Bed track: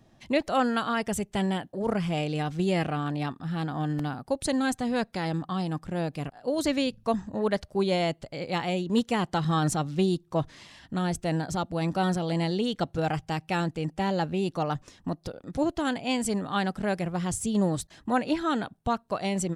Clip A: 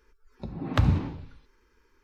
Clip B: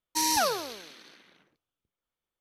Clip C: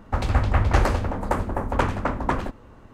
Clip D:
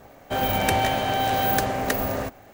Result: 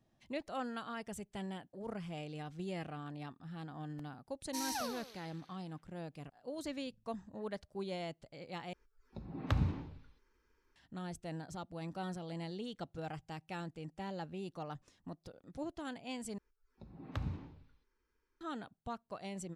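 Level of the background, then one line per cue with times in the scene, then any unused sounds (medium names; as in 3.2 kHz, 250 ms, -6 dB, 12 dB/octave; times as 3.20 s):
bed track -15.5 dB
4.38 s: add B -14 dB
8.73 s: replace with A -10 dB
16.38 s: replace with A -17 dB
not used: C, D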